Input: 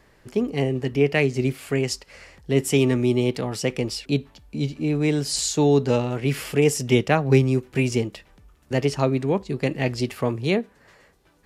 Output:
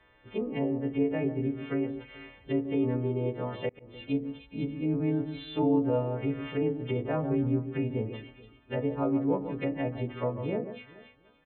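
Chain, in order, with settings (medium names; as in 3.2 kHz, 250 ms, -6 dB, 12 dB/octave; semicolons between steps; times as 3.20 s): partials quantised in pitch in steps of 2 st; peak limiter -11.5 dBFS, peak gain reduction 7 dB; resampled via 8 kHz; echo whose repeats swap between lows and highs 144 ms, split 1.5 kHz, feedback 50%, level -10 dB; low-pass that closes with the level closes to 970 Hz, closed at -20.5 dBFS; hum notches 50/100/150/200/250/300/350 Hz; FDN reverb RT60 0.35 s, low-frequency decay 0.8×, high-frequency decay 0.4×, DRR 9 dB; 3.69–4.09 s: slow attack 330 ms; trim -6.5 dB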